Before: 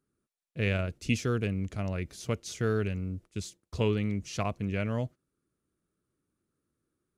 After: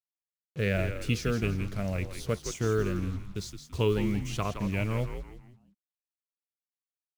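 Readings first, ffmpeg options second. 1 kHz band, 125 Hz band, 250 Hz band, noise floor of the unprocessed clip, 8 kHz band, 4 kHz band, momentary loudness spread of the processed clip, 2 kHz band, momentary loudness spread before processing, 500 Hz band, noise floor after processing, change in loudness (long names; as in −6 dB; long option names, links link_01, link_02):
+1.0 dB, +1.0 dB, +1.0 dB, −85 dBFS, +1.5 dB, +1.5 dB, 11 LU, +1.0 dB, 10 LU, +2.0 dB, below −85 dBFS, +1.0 dB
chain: -filter_complex "[0:a]afftfilt=real='re*pow(10,7/40*sin(2*PI*(0.62*log(max(b,1)*sr/1024/100)/log(2)-(1.8)*(pts-256)/sr)))':imag='im*pow(10,7/40*sin(2*PI*(0.62*log(max(b,1)*sr/1024/100)/log(2)-(1.8)*(pts-256)/sr)))':win_size=1024:overlap=0.75,bandreject=frequency=356.8:width_type=h:width=4,bandreject=frequency=713.6:width_type=h:width=4,bandreject=frequency=1070.4:width_type=h:width=4,bandreject=frequency=1427.2:width_type=h:width=4,acrusher=bits=7:mix=0:aa=0.5,asplit=5[link_01][link_02][link_03][link_04][link_05];[link_02]adelay=167,afreqshift=-81,volume=-8dB[link_06];[link_03]adelay=334,afreqshift=-162,volume=-16.6dB[link_07];[link_04]adelay=501,afreqshift=-243,volume=-25.3dB[link_08];[link_05]adelay=668,afreqshift=-324,volume=-33.9dB[link_09];[link_01][link_06][link_07][link_08][link_09]amix=inputs=5:normalize=0"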